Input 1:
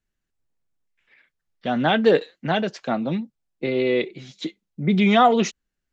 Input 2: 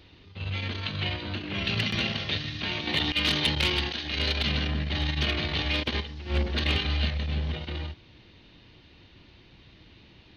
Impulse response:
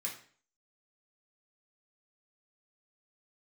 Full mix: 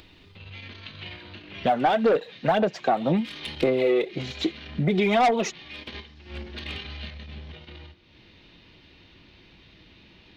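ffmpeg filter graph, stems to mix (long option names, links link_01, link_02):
-filter_complex "[0:a]equalizer=frequency=730:width=0.92:gain=11,aphaser=in_gain=1:out_gain=1:delay=2.7:decay=0.53:speed=1.9:type=sinusoidal,volume=0.5dB,asplit=2[link_01][link_02];[1:a]volume=-10dB,asplit=2[link_03][link_04];[link_04]volume=-7dB[link_05];[link_02]apad=whole_len=457001[link_06];[link_03][link_06]sidechaincompress=threshold=-31dB:ratio=3:attack=16:release=269[link_07];[2:a]atrim=start_sample=2205[link_08];[link_05][link_08]afir=irnorm=-1:irlink=0[link_09];[link_01][link_07][link_09]amix=inputs=3:normalize=0,acompressor=mode=upward:threshold=-42dB:ratio=2.5,asoftclip=type=tanh:threshold=-4dB,acompressor=threshold=-19dB:ratio=6"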